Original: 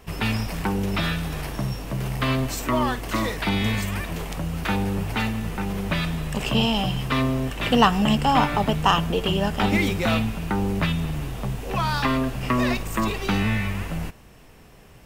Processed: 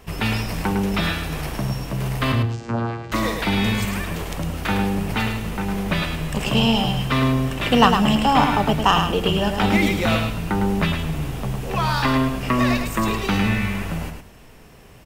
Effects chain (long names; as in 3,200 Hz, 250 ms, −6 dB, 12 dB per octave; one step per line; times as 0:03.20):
0:02.32–0:03.12: channel vocoder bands 8, saw 116 Hz
repeating echo 106 ms, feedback 21%, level −6 dB
level +2 dB